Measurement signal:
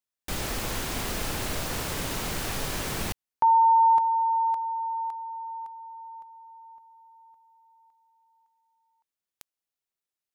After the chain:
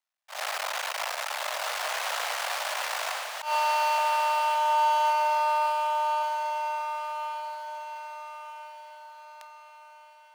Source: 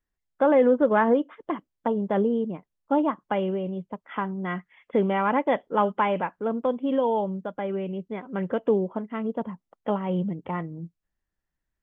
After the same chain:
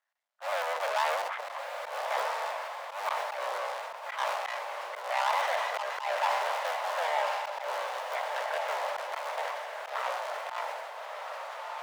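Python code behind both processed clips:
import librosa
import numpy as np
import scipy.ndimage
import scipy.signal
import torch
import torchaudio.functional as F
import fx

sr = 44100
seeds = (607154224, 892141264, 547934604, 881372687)

p1 = fx.cycle_switch(x, sr, every=3, mode='muted')
p2 = fx.lowpass(p1, sr, hz=2700.0, slope=6)
p3 = fx.over_compress(p2, sr, threshold_db=-30.0, ratio=-1.0)
p4 = p2 + (p3 * 10.0 ** (1.5 / 20.0))
p5 = np.clip(10.0 ** (23.5 / 20.0) * p4, -1.0, 1.0) / 10.0 ** (23.5 / 20.0)
p6 = scipy.signal.sosfilt(scipy.signal.butter(8, 600.0, 'highpass', fs=sr, output='sos'), p5)
p7 = fx.echo_diffused(p6, sr, ms=1311, feedback_pct=44, wet_db=-4.5)
p8 = fx.rev_fdn(p7, sr, rt60_s=0.46, lf_ratio=1.0, hf_ratio=0.95, size_ms=20.0, drr_db=17.0)
p9 = fx.auto_swell(p8, sr, attack_ms=115.0)
y = fx.sustainer(p9, sr, db_per_s=29.0)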